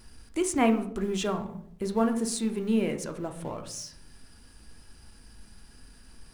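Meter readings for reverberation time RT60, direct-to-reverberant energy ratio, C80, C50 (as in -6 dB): 0.65 s, 5.5 dB, 15.0 dB, 11.0 dB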